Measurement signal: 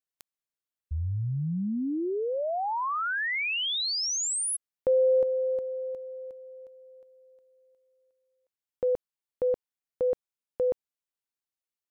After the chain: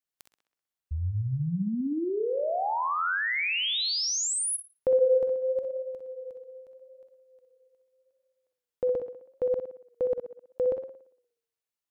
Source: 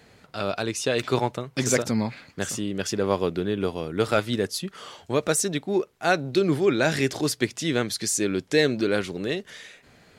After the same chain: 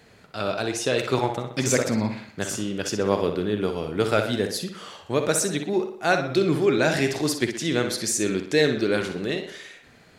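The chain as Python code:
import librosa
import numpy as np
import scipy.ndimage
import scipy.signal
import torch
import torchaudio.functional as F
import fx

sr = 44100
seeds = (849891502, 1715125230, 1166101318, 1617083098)

p1 = fx.doubler(x, sr, ms=47.0, db=-14.0)
y = p1 + fx.echo_tape(p1, sr, ms=61, feedback_pct=56, wet_db=-7, lp_hz=5400.0, drive_db=5.0, wow_cents=38, dry=0)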